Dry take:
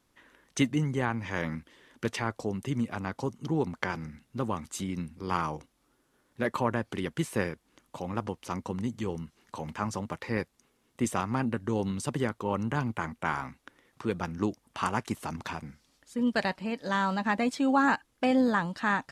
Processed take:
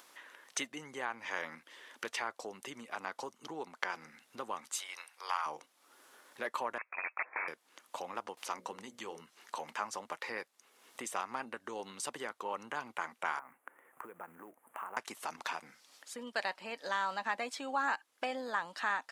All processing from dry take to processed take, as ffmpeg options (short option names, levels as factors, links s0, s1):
-filter_complex "[0:a]asettb=1/sr,asplit=3[s0][s1][s2];[s0]atrim=end=4.794[s3];[s1]atrim=start=4.79:end=5.46,asetpts=PTS-STARTPTS,afade=t=in:d=0.004:c=qsin,afade=t=out:st=0.666:d=0.004:c=qsin,highpass=f=660:w=0.5412,highpass=f=660:w=1.3066,bandreject=f=7400:w=13[s4];[s2]atrim=start=5.456[s5];[s3][s4]acrossfade=d=0.004:c1=hsin:c2=qsin[s6];[s6][s5]acrossfade=d=0.004:c1=qsin:c2=hsin,asettb=1/sr,asplit=3[s7][s8][s9];[s7]atrim=end=6.784[s10];[s8]atrim=start=6.78:end=7.48,asetpts=PTS-STARTPTS,afade=t=in:d=0.004:c=qsin,afade=t=out:st=0.696:d=0.004:c=qsin,aeval=exprs='(mod(15*val(0)+1,2)-1)/15':c=same,highpass=470,lowpass=f=2400:t=q:w=0.5098,lowpass=f=2400:t=q:w=0.6013,lowpass=f=2400:t=q:w=0.9,lowpass=f=2400:t=q:w=2.563,afreqshift=-2800[s11];[s9]atrim=start=7.476[s12];[s10][s11]acrossfade=d=0.004:c1=hsin:c2=qsin[s13];[s13][s12]acrossfade=d=0.004:c1=qsin:c2=hsin,asettb=1/sr,asplit=3[s14][s15][s16];[s14]atrim=end=8.374[s17];[s15]atrim=start=8.37:end=9.21,asetpts=PTS-STARTPTS,afade=t=in:d=0.004:c=qsin,afade=t=out:st=0.836:d=0.004:c=qsin,bandreject=f=60:t=h:w=6,bandreject=f=120:t=h:w=6,bandreject=f=180:t=h:w=6,bandreject=f=240:t=h:w=6,bandreject=f=300:t=h:w=6,bandreject=f=360:t=h:w=6,bandreject=f=420:t=h:w=6,bandreject=f=480:t=h:w=6,bandreject=f=540:t=h:w=6,bandreject=f=600:t=h:w=6,acompressor=mode=upward:threshold=0.01:ratio=2.5:attack=3.2:release=140:knee=2.83:detection=peak[s18];[s16]atrim=start=9.206[s19];[s17][s18]acrossfade=d=0.004:c1=hsin:c2=qsin[s20];[s20][s19]acrossfade=d=0.004:c1=qsin:c2=hsin,asettb=1/sr,asplit=3[s21][s22][s23];[s21]atrim=end=13.394[s24];[s22]atrim=start=13.39:end=14.97,asetpts=PTS-STARTPTS,afade=t=in:d=0.004:c=qsin,afade=t=out:st=1.576:d=0.004:c=qsin,acompressor=threshold=0.00794:ratio=5:attack=3.2:release=140:knee=1:detection=peak,acrusher=bits=5:mode=log:mix=0:aa=0.000001,asuperstop=centerf=4600:order=4:qfactor=0.51[s25];[s23]atrim=start=14.966[s26];[s24][s25]acrossfade=d=0.004:c1=hsin:c2=qsin[s27];[s27][s26]acrossfade=d=0.004:c1=qsin:c2=hsin,acompressor=threshold=0.00794:ratio=2,highpass=630,acompressor=mode=upward:threshold=0.00158:ratio=2.5,volume=1.78"